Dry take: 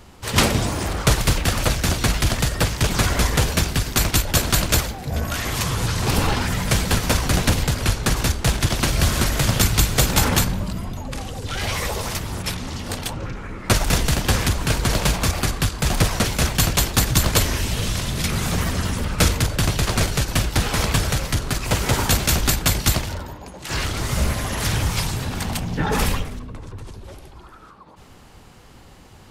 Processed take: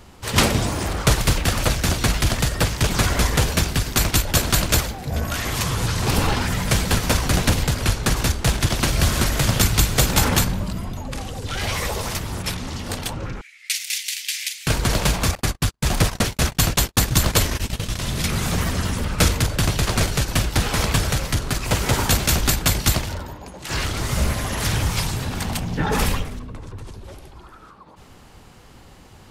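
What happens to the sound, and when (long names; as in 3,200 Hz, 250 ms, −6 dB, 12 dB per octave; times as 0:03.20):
0:13.41–0:14.67: elliptic high-pass filter 2,100 Hz, stop band 60 dB
0:15.35–0:18.00: noise gate −23 dBFS, range −50 dB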